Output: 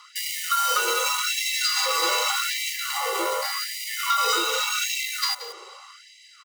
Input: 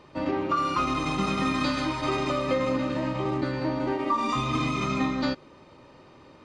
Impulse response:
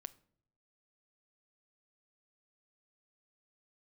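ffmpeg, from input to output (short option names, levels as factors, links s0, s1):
-filter_complex "[0:a]dynaudnorm=f=220:g=11:m=2.51,asplit=2[s0][s1];[s1]acrusher=bits=4:mix=0:aa=0.000001,volume=0.398[s2];[s0][s2]amix=inputs=2:normalize=0,asoftclip=type=tanh:threshold=0.224,aecho=1:1:1.1:0.95,afreqshift=210,bass=f=250:g=13,treble=f=4000:g=14,acompressor=threshold=0.0891:ratio=6,equalizer=f=290:w=1.3:g=-8.5,asplit=2[s3][s4];[s4]aecho=0:1:177:0.2[s5];[s3][s5]amix=inputs=2:normalize=0,afftfilt=real='re*gte(b*sr/1024,340*pow(1900/340,0.5+0.5*sin(2*PI*0.85*pts/sr)))':imag='im*gte(b*sr/1024,340*pow(1900/340,0.5+0.5*sin(2*PI*0.85*pts/sr)))':win_size=1024:overlap=0.75,volume=1.33"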